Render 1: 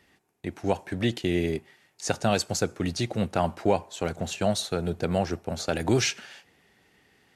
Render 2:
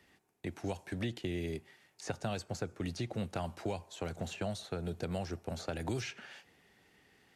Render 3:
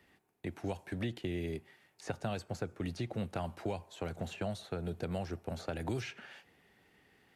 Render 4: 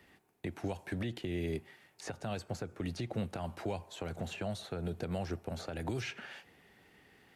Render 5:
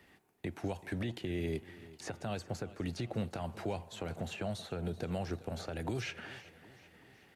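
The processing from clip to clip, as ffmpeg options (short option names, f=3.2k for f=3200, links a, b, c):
-filter_complex "[0:a]acrossover=split=120|2900[a][b][c];[a]acompressor=threshold=-38dB:ratio=4[d];[b]acompressor=threshold=-33dB:ratio=4[e];[c]acompressor=threshold=-47dB:ratio=4[f];[d][e][f]amix=inputs=3:normalize=0,volume=-3.5dB"
-af "equalizer=f=6.3k:w=0.91:g=-6"
-af "alimiter=level_in=7dB:limit=-24dB:level=0:latency=1:release=175,volume=-7dB,volume=4dB"
-af "aecho=1:1:382|764|1146|1528|1910:0.126|0.0705|0.0395|0.0221|0.0124"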